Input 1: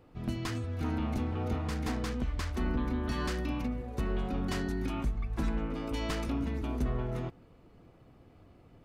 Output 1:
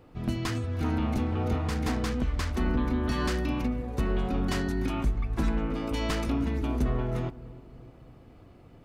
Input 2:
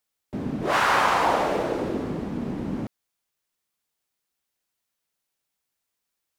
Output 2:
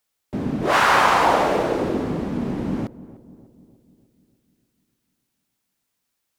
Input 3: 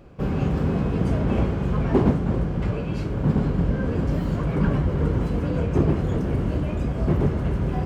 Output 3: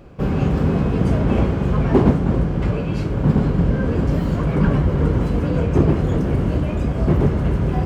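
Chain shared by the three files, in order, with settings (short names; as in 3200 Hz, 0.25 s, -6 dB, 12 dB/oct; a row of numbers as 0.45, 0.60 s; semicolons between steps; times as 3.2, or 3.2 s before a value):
darkening echo 0.299 s, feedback 57%, low-pass 930 Hz, level -17 dB; gain +4.5 dB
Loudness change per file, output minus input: +4.5, +4.5, +4.5 LU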